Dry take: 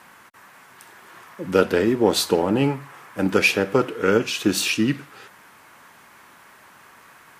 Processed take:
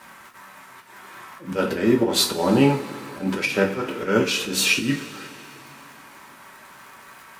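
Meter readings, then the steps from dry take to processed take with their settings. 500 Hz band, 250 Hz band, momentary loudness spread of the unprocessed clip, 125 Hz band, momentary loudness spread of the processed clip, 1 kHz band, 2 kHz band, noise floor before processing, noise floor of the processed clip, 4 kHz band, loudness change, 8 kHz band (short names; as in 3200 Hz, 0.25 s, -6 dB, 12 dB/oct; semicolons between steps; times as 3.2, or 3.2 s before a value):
-2.5 dB, 0.0 dB, 9 LU, +0.5 dB, 20 LU, -1.0 dB, -1.0 dB, -50 dBFS, -47 dBFS, +2.0 dB, -0.5 dB, +2.0 dB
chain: crackle 63/s -38 dBFS; auto swell 0.145 s; two-slope reverb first 0.26 s, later 3.3 s, from -22 dB, DRR -1 dB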